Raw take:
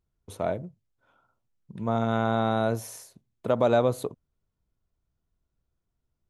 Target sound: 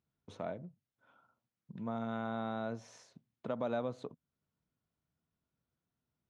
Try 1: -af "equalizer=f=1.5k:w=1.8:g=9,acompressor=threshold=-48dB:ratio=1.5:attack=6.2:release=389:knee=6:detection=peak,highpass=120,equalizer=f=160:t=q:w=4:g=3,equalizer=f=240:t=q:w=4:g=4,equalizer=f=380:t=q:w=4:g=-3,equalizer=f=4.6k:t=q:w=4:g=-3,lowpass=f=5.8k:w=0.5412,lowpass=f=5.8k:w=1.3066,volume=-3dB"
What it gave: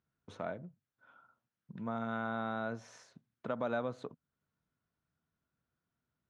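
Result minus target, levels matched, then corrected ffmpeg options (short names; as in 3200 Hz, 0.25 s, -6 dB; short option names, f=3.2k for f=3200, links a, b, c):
2000 Hz band +5.5 dB
-af "equalizer=f=1.5k:w=1.8:g=2,acompressor=threshold=-48dB:ratio=1.5:attack=6.2:release=389:knee=6:detection=peak,highpass=120,equalizer=f=160:t=q:w=4:g=3,equalizer=f=240:t=q:w=4:g=4,equalizer=f=380:t=q:w=4:g=-3,equalizer=f=4.6k:t=q:w=4:g=-3,lowpass=f=5.8k:w=0.5412,lowpass=f=5.8k:w=1.3066,volume=-3dB"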